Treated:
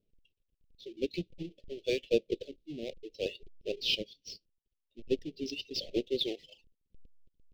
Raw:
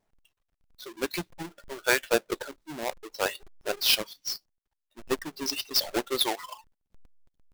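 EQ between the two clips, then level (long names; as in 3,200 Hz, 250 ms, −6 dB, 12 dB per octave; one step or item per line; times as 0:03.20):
Chebyshev band-stop filter 490–2,800 Hz, order 3
high-frequency loss of the air 240 metres
0.0 dB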